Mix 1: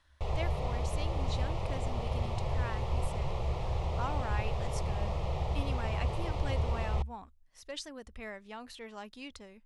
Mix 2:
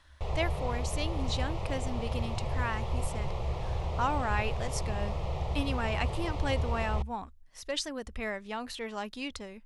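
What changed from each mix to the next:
speech +8.0 dB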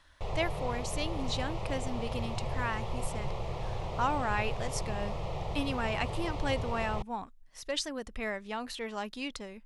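master: add peaking EQ 70 Hz -14 dB 0.34 oct

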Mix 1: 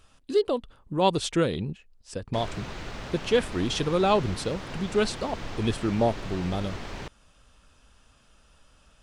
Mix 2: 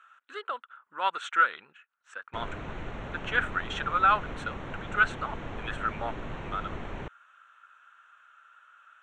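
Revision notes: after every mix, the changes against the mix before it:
speech: add resonant high-pass 1.4 kHz, resonance Q 7.3; master: add boxcar filter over 9 samples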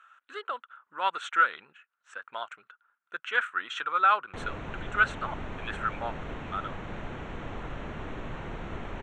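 background: entry +2.00 s

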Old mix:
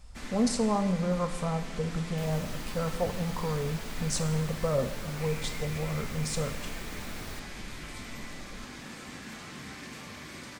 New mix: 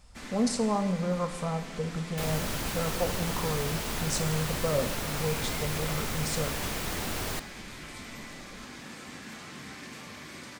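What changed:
second sound +11.5 dB; master: add bass shelf 64 Hz -9.5 dB

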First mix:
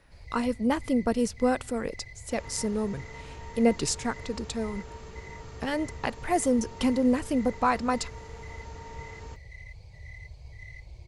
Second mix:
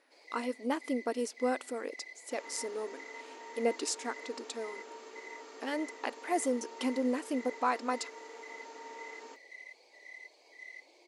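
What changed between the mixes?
speech -5.5 dB; second sound: send off; master: add brick-wall FIR high-pass 240 Hz

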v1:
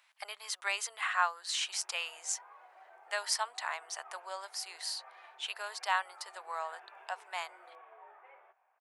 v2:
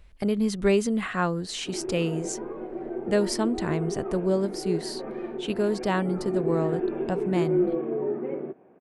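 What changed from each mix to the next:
background +6.5 dB; master: remove steep high-pass 800 Hz 36 dB/octave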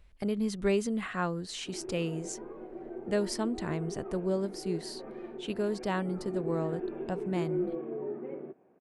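speech -6.0 dB; background -8.5 dB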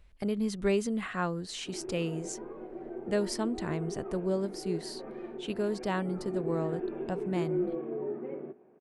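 reverb: on, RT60 2.9 s

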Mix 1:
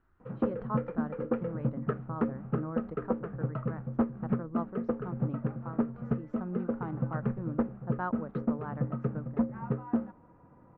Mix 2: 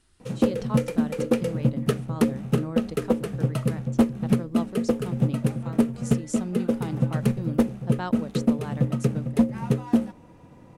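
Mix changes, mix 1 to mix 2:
speech -3.5 dB; master: remove four-pole ladder low-pass 1.6 kHz, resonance 45%

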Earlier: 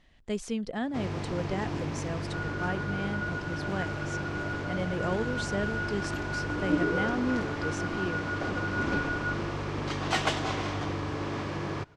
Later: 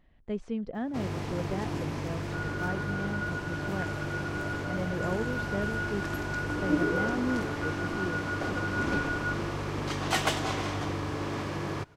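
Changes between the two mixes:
speech: add tape spacing loss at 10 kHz 36 dB; master: remove low-pass 6.4 kHz 12 dB/octave

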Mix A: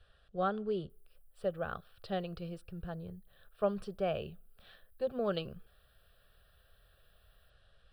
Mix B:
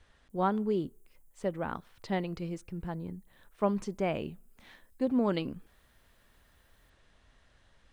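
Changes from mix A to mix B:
background: entry -0.60 s; master: remove static phaser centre 1.4 kHz, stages 8

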